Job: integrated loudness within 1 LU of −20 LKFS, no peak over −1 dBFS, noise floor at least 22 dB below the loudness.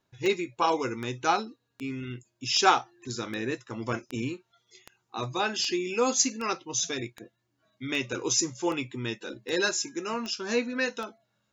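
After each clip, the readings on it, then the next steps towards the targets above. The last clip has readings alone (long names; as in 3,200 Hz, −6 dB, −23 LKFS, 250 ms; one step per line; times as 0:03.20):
number of clicks 15; integrated loudness −29.0 LKFS; sample peak −7.5 dBFS; target loudness −20.0 LKFS
→ click removal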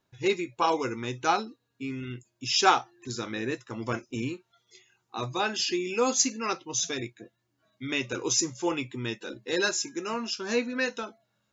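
number of clicks 0; integrated loudness −29.0 LKFS; sample peak −7.5 dBFS; target loudness −20.0 LKFS
→ level +9 dB
brickwall limiter −1 dBFS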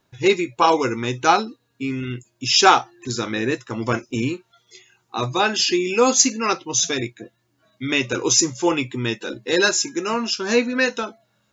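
integrated loudness −20.0 LKFS; sample peak −1.0 dBFS; background noise floor −68 dBFS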